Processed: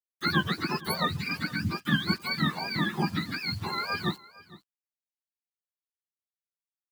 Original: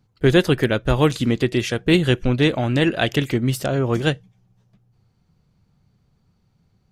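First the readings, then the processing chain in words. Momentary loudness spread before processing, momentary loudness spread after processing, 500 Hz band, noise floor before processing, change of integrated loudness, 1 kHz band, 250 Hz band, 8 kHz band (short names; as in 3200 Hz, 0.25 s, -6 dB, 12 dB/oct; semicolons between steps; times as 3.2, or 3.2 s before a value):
5 LU, 5 LU, -19.5 dB, -65 dBFS, -9.5 dB, -3.0 dB, -11.5 dB, -11.0 dB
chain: spectrum mirrored in octaves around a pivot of 750 Hz; bit-crush 7-bit; echo 0.458 s -20.5 dB; gain -8 dB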